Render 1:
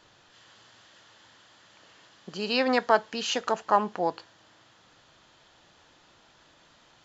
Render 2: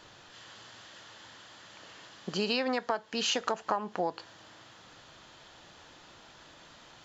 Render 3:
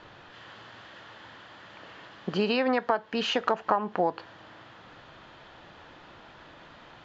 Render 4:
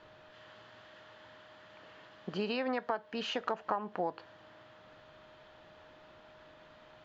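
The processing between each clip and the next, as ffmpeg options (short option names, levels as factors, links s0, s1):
-af "acompressor=threshold=0.0282:ratio=16,volume=1.78"
-af "lowpass=2600,volume=1.88"
-af "aeval=exprs='val(0)+0.00316*sin(2*PI*620*n/s)':c=same,volume=0.376"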